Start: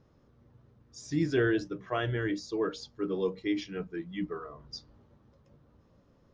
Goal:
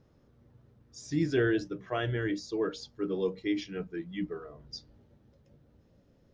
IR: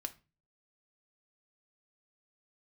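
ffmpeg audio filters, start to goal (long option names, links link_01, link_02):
-af "asetnsamples=nb_out_samples=441:pad=0,asendcmd='4.29 equalizer g -10.5',equalizer=frequency=1100:width_type=o:width=0.56:gain=-4"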